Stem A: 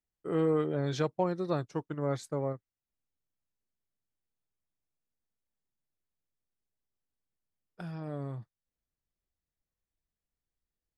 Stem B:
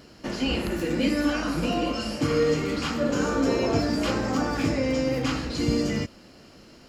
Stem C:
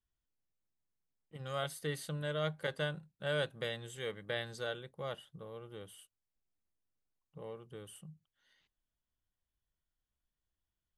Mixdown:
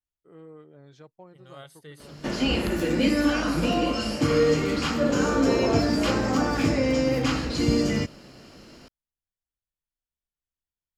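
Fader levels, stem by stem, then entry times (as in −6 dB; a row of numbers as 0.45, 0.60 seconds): −19.0, +2.0, −8.0 decibels; 0.00, 2.00, 0.00 seconds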